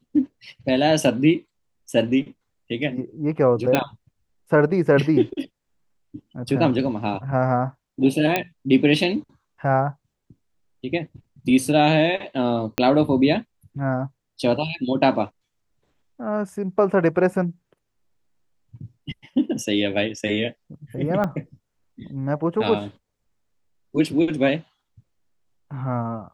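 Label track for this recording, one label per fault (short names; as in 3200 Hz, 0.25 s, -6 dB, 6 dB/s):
3.750000	3.750000	pop -5 dBFS
8.360000	8.360000	pop -6 dBFS
12.780000	12.780000	pop -5 dBFS
21.240000	21.240000	gap 2.9 ms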